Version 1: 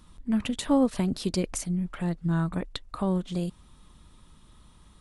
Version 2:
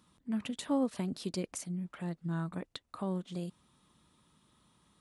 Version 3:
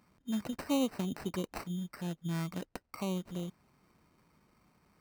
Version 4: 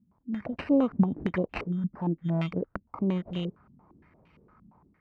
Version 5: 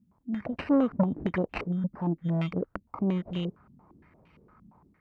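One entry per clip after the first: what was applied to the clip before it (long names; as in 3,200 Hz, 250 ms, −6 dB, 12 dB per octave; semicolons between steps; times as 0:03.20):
high-pass filter 130 Hz 12 dB per octave; level −8 dB
sample-rate reduction 3,400 Hz, jitter 0%
parametric band 76 Hz +6 dB 2.4 octaves; automatic gain control gain up to 10.5 dB; low-pass on a step sequencer 8.7 Hz 220–2,800 Hz; level −7 dB
saturating transformer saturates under 410 Hz; level +1 dB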